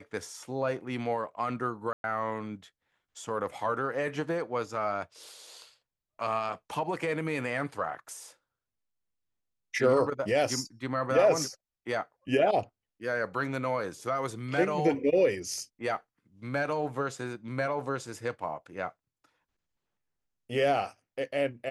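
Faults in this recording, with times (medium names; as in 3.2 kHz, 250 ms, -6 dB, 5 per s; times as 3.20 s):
1.93–2.04 s: dropout 111 ms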